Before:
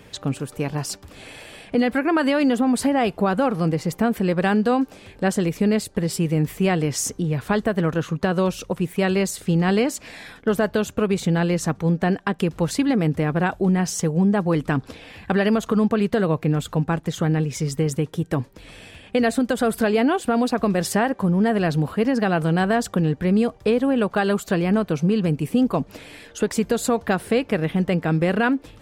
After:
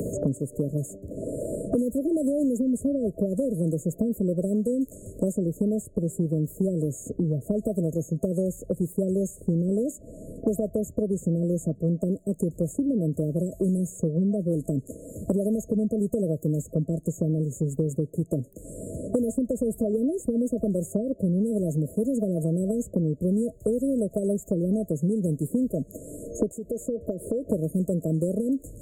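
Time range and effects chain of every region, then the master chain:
26.51–27.48 tone controls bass -10 dB, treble -1 dB + compressor 2.5:1, threshold -32 dBFS
whole clip: FFT band-reject 660–6500 Hz; three-band squash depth 100%; gain -5 dB

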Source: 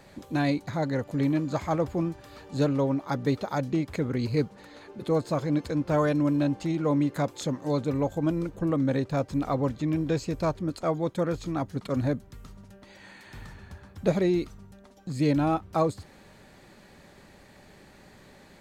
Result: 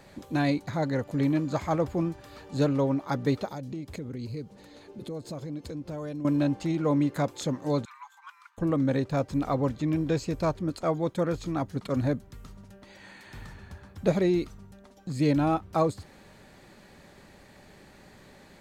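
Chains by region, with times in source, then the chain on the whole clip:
3.47–6.25 bell 1400 Hz -8 dB 1.8 oct + compressor 3:1, threshold -35 dBFS
7.85–8.58 steep high-pass 970 Hz 72 dB/oct + high shelf 2500 Hz -11 dB
whole clip: dry

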